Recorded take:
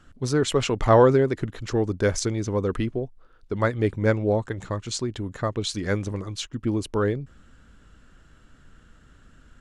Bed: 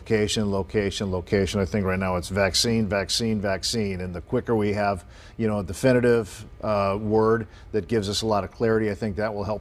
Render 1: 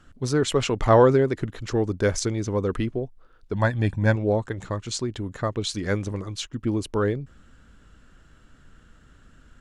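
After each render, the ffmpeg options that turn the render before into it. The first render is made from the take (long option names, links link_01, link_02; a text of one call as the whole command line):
ffmpeg -i in.wav -filter_complex "[0:a]asettb=1/sr,asplit=3[link_01][link_02][link_03];[link_01]atrim=end=3.534[link_04];[link_02]atrim=start=3.53:end=4.16,asetpts=PTS-STARTPTS,afade=type=in:duration=0.004:curve=qsin,afade=type=out:start_time=0.626:duration=0.004:curve=qsin,aecho=1:1:1.2:0.67,atrim=end_sample=27783[link_05];[link_03]atrim=start=4.156[link_06];[link_04][link_05]acrossfade=duration=0.004:curve1=hsin:curve2=qsin[link_07];[link_07][link_06]acrossfade=duration=0.004:curve1=qsin:curve2=hsin" out.wav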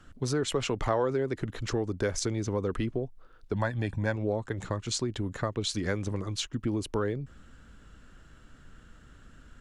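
ffmpeg -i in.wav -filter_complex "[0:a]acrossover=split=280|1100[link_01][link_02][link_03];[link_01]alimiter=limit=-21.5dB:level=0:latency=1[link_04];[link_04][link_02][link_03]amix=inputs=3:normalize=0,acompressor=threshold=-27dB:ratio=3" out.wav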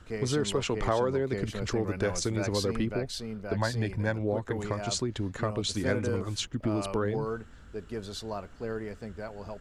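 ffmpeg -i in.wav -i bed.wav -filter_complex "[1:a]volume=-13.5dB[link_01];[0:a][link_01]amix=inputs=2:normalize=0" out.wav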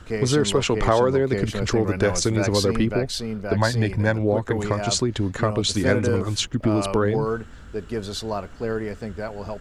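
ffmpeg -i in.wav -af "volume=8.5dB" out.wav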